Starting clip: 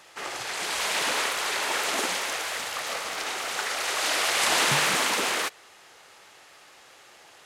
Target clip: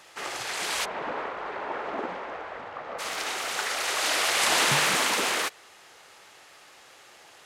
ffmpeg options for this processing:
-filter_complex "[0:a]asplit=3[s0][s1][s2];[s0]afade=t=out:st=0.84:d=0.02[s3];[s1]lowpass=1100,afade=t=in:st=0.84:d=0.02,afade=t=out:st=2.98:d=0.02[s4];[s2]afade=t=in:st=2.98:d=0.02[s5];[s3][s4][s5]amix=inputs=3:normalize=0"

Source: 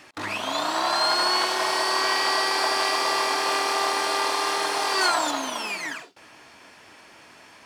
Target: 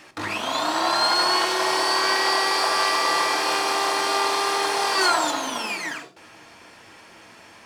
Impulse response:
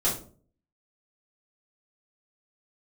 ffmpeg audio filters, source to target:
-filter_complex "[0:a]asplit=2[s0][s1];[1:a]atrim=start_sample=2205,lowshelf=f=160:g=8[s2];[s1][s2]afir=irnorm=-1:irlink=0,volume=0.158[s3];[s0][s3]amix=inputs=2:normalize=0"

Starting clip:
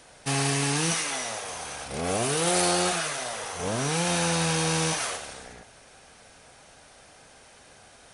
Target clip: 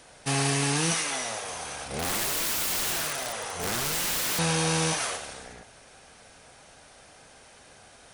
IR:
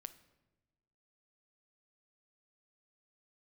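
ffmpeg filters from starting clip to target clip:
-filter_complex "[0:a]asettb=1/sr,asplit=3[s0][s1][s2];[s0]atrim=end=1.984[s3];[s1]atrim=start=1.98:end=4.39,asetpts=PTS-STARTPTS,afade=t=in:d=0.004:c=qsin,afade=t=out:st=2.406:d=0.004:c=qsin,aeval=exprs='(mod(15*val(0)+1,2)-1)/15':c=same[s4];[s2]atrim=start=4.386[s5];[s3][s4]acrossfade=d=0.004:c1=hsin:c2=qsin[s6];[s6][s5]acrossfade=d=0.004:c1=qsin:c2=hsin"

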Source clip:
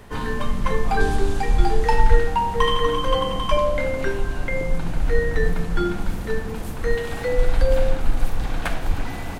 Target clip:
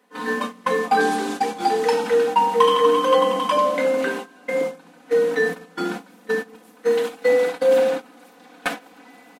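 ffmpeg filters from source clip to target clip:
-af "highpass=f=230:w=0.5412,highpass=f=230:w=1.3066,agate=range=0.126:threshold=0.0355:ratio=16:detection=peak,aecho=1:1:4:0.84,volume=1.26"

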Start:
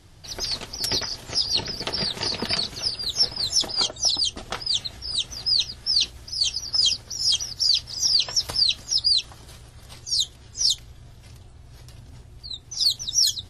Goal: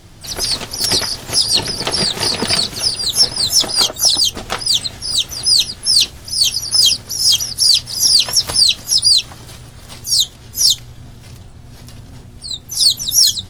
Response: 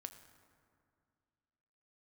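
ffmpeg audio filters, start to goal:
-filter_complex "[0:a]asplit=3[s0][s1][s2];[s1]asetrate=52444,aresample=44100,atempo=0.840896,volume=0.178[s3];[s2]asetrate=88200,aresample=44100,atempo=0.5,volume=0.355[s4];[s0][s3][s4]amix=inputs=3:normalize=0,acontrast=74,equalizer=f=61:w=4.8:g=-7.5,volume=1.33"

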